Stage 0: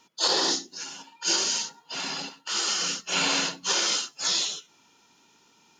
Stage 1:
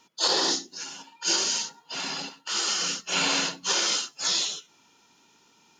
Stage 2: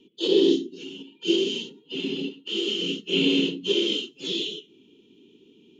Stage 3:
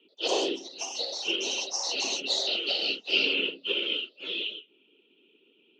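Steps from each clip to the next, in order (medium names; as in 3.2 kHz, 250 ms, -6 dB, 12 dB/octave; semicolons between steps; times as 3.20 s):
no audible change
FFT filter 150 Hz 0 dB, 230 Hz +7 dB, 410 Hz +11 dB, 670 Hz -23 dB, 1.6 kHz -29 dB, 3.1 kHz +2 dB, 4.9 kHz -25 dB, 10 kHz -21 dB; trim +5.5 dB
harmonic-percussive split harmonic -12 dB; cabinet simulation 430–3400 Hz, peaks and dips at 600 Hz +8 dB, 1.4 kHz +10 dB, 2.6 kHz +9 dB; ever faster or slower copies 86 ms, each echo +6 st, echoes 2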